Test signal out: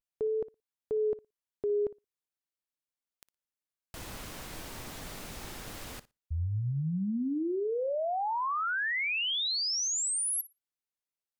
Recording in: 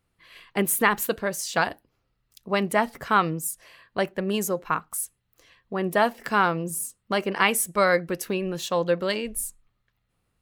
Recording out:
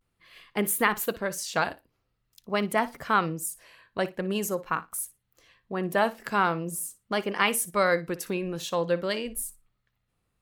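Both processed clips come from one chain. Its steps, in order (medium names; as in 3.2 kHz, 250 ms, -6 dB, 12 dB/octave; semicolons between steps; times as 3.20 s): vibrato 0.45 Hz 55 cents; flutter echo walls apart 10 m, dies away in 0.2 s; trim -3 dB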